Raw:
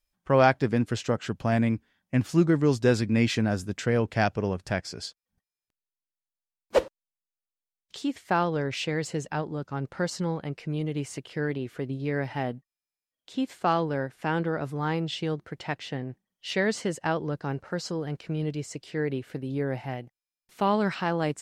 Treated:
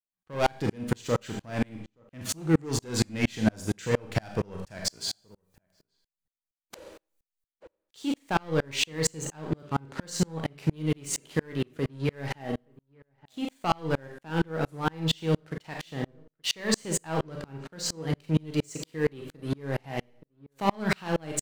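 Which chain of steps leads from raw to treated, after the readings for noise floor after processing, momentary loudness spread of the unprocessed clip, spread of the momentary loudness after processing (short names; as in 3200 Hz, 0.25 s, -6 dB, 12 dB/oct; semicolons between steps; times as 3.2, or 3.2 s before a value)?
under -85 dBFS, 11 LU, 10 LU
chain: high shelf 3600 Hz +8.5 dB; notch 5200 Hz, Q 12; sample leveller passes 3; limiter -13 dBFS, peak gain reduction 6 dB; reverse; upward compressor, threshold -40 dBFS; reverse; resonator 160 Hz, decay 0.23 s, harmonics all, mix 50%; in parallel at -5 dB: crossover distortion -40.5 dBFS; on the sum: outdoor echo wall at 150 m, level -26 dB; Schroeder reverb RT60 0.34 s, combs from 29 ms, DRR 6.5 dB; dB-ramp tremolo swelling 4.3 Hz, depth 36 dB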